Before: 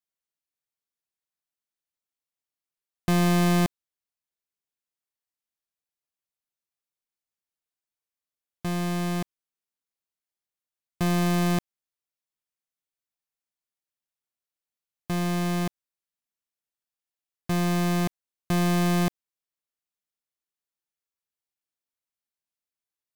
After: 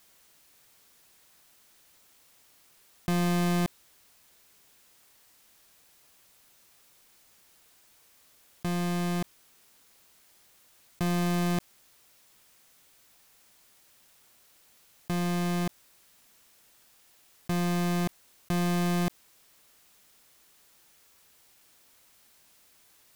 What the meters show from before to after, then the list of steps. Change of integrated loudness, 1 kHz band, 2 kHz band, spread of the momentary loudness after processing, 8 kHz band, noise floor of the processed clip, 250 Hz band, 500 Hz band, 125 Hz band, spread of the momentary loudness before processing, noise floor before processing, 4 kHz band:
-4.0 dB, -4.0 dB, -4.0 dB, 8 LU, -3.5 dB, -62 dBFS, -4.0 dB, -4.0 dB, -4.0 dB, 10 LU, under -85 dBFS, -3.5 dB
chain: fast leveller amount 50%; gain -5 dB

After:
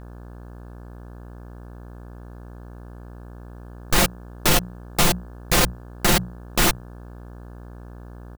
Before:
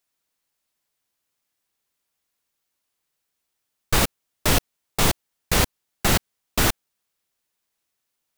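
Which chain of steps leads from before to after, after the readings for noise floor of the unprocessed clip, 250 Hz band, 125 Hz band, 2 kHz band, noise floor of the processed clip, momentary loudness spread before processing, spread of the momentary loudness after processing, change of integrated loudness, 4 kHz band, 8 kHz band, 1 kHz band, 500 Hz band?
-79 dBFS, +2.5 dB, +0.5 dB, +2.0 dB, -40 dBFS, 7 LU, 7 LU, +2.0 dB, +2.0 dB, +2.0 dB, +2.0 dB, +2.0 dB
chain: notches 60/120/180 Hz; comb 5.7 ms, depth 61%; limiter -14.5 dBFS, peak gain reduction 10 dB; buzz 60 Hz, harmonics 29, -47 dBFS -6 dB/oct; gain +7.5 dB

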